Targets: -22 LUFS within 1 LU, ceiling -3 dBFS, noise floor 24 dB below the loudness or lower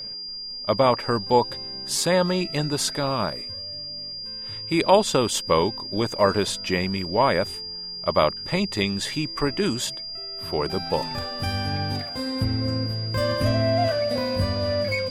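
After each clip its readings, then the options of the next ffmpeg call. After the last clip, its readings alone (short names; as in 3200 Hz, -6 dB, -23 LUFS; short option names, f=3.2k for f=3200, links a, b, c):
steady tone 4800 Hz; tone level -32 dBFS; loudness -24.0 LUFS; peak -4.0 dBFS; loudness target -22.0 LUFS
-> -af "bandreject=f=4.8k:w=30"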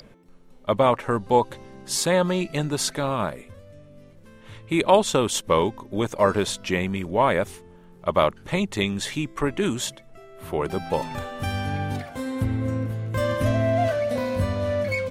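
steady tone none; loudness -24.5 LUFS; peak -3.5 dBFS; loudness target -22.0 LUFS
-> -af "volume=2.5dB,alimiter=limit=-3dB:level=0:latency=1"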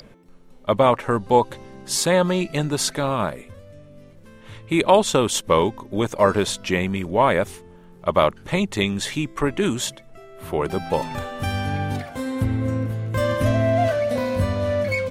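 loudness -22.0 LUFS; peak -3.0 dBFS; noise floor -47 dBFS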